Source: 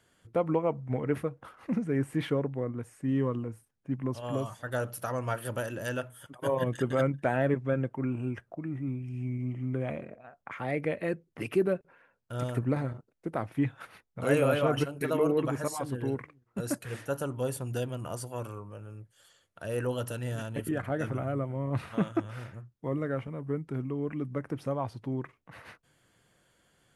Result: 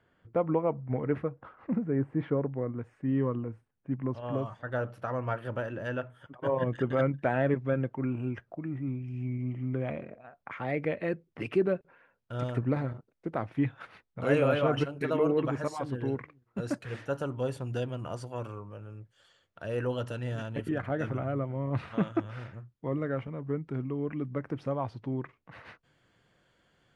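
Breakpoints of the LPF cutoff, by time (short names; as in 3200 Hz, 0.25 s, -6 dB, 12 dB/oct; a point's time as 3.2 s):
1.35 s 2100 Hz
2.17 s 1100 Hz
2.56 s 2300 Hz
6.61 s 2300 Hz
7.42 s 4500 Hz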